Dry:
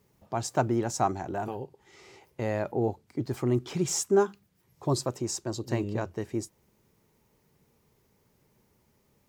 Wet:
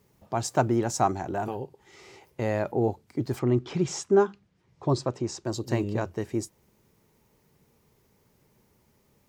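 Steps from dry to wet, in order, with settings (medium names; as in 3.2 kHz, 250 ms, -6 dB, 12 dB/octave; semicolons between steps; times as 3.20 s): 3.39–5.45 s: distance through air 110 m; trim +2.5 dB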